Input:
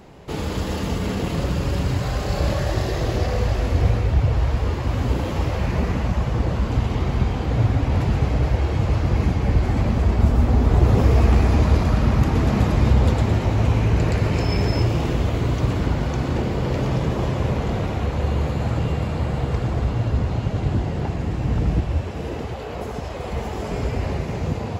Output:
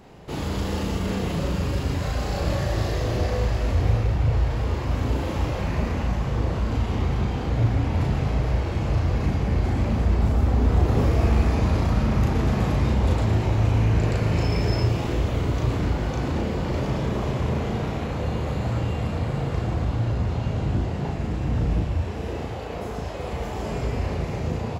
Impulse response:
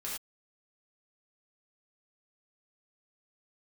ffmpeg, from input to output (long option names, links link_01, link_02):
-filter_complex "[0:a]asplit=2[link_01][link_02];[link_02]asoftclip=type=hard:threshold=-22dB,volume=-8.5dB[link_03];[link_01][link_03]amix=inputs=2:normalize=0,asplit=2[link_04][link_05];[link_05]adelay=36,volume=-2dB[link_06];[link_04][link_06]amix=inputs=2:normalize=0,volume=-6.5dB"